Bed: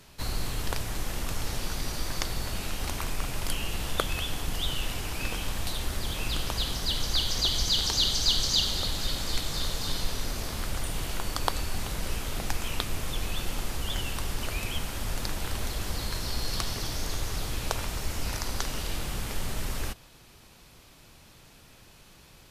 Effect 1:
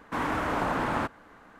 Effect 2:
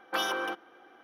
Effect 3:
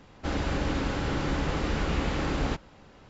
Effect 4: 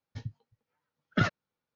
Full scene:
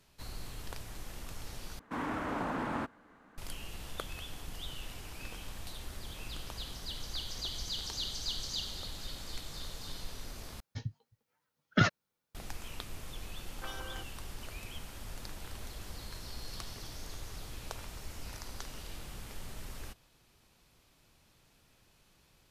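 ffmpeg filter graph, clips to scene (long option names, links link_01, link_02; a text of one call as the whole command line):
ffmpeg -i bed.wav -i cue0.wav -i cue1.wav -i cue2.wav -i cue3.wav -filter_complex "[0:a]volume=-12.5dB[link_01];[1:a]equalizer=frequency=240:width=1.4:gain=5[link_02];[4:a]highshelf=frequency=4500:gain=8[link_03];[link_01]asplit=3[link_04][link_05][link_06];[link_04]atrim=end=1.794[link_07];[link_02]atrim=end=1.59,asetpts=PTS-STARTPTS,volume=-8.5dB[link_08];[link_05]atrim=start=3.376:end=10.604[link_09];[link_03]atrim=end=1.75[link_10];[link_06]atrim=start=12.346[link_11];[2:a]atrim=end=1.03,asetpts=PTS-STARTPTS,volume=-14.5dB,afade=type=in:duration=0.004:curve=hsin,afade=type=out:start_time=1.026:duration=0.004:curve=hsin,adelay=13490[link_12];[link_07][link_08]acrossfade=duration=0.004:curve1=hsin:curve2=hsin[link_13];[link_13][link_09]acrossfade=duration=0.004:curve1=hsin:curve2=hsin[link_14];[link_14][link_10]acrossfade=duration=0.004:curve1=hsin:curve2=hsin[link_15];[link_15][link_11]acrossfade=duration=0.004:curve1=hsin:curve2=hsin[link_16];[link_16][link_12]amix=inputs=2:normalize=0" out.wav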